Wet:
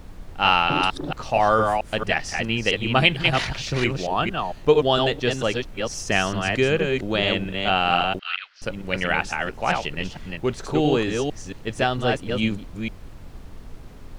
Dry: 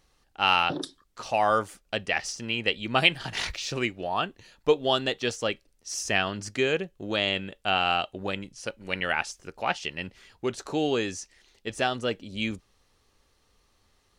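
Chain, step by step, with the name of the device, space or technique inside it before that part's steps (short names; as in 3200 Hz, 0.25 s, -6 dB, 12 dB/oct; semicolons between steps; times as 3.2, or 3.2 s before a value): reverse delay 0.226 s, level -3.5 dB; car interior (bell 140 Hz +6.5 dB 0.77 oct; high shelf 4200 Hz -7 dB; brown noise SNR 14 dB); 8.19–8.62 elliptic band-pass 1400–4800 Hz, stop band 70 dB; gain +4.5 dB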